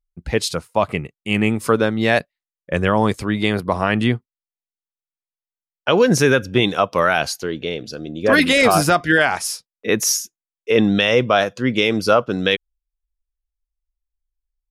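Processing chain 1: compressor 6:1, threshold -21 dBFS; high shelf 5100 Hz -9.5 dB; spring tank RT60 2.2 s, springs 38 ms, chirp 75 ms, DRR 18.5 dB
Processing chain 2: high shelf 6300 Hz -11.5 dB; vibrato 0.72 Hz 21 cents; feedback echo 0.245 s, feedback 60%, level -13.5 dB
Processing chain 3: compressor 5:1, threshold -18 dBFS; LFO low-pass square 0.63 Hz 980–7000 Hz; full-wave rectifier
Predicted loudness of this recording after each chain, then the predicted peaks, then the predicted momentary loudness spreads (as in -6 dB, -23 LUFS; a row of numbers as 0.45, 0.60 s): -27.0, -18.5, -26.5 LUFS; -8.5, -1.5, -4.5 dBFS; 7, 16, 9 LU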